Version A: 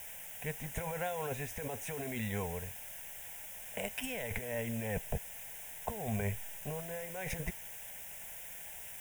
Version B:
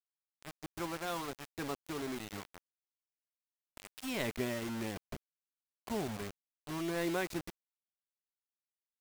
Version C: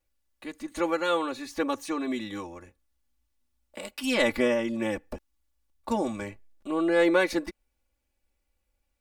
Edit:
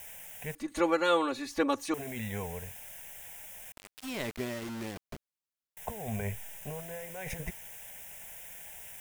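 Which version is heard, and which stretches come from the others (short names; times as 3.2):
A
0.55–1.94 from C
3.72–5.77 from B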